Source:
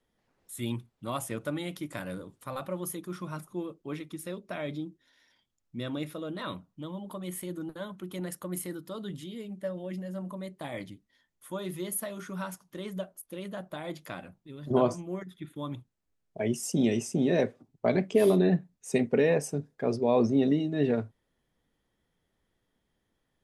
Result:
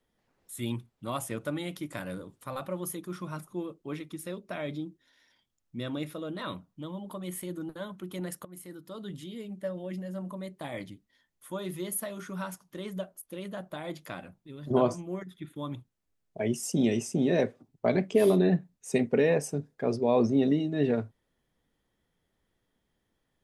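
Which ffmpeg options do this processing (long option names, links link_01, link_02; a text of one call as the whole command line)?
ffmpeg -i in.wav -filter_complex "[0:a]asplit=2[link_01][link_02];[link_01]atrim=end=8.45,asetpts=PTS-STARTPTS,afade=type=out:start_time=8.446:duration=0.004:curve=hsin:silence=0.125893[link_03];[link_02]atrim=start=8.45,asetpts=PTS-STARTPTS,afade=type=in:duration=1.09:curve=qsin:silence=0.125893[link_04];[link_03][link_04]concat=n=2:v=0:a=1" out.wav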